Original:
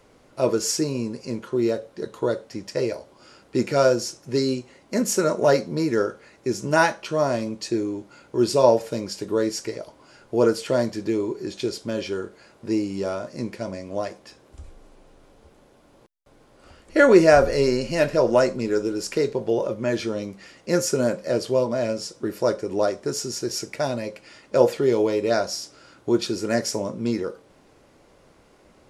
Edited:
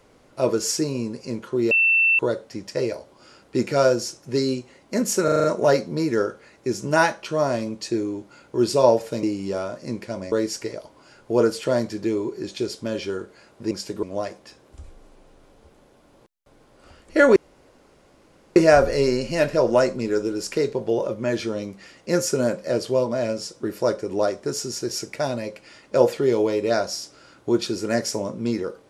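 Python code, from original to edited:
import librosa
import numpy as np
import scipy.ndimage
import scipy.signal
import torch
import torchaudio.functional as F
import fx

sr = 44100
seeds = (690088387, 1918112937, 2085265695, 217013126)

y = fx.edit(x, sr, fx.bleep(start_s=1.71, length_s=0.48, hz=2680.0, db=-14.5),
    fx.stutter(start_s=5.24, slice_s=0.04, count=6),
    fx.swap(start_s=9.03, length_s=0.32, other_s=12.74, other_length_s=1.09),
    fx.insert_room_tone(at_s=17.16, length_s=1.2), tone=tone)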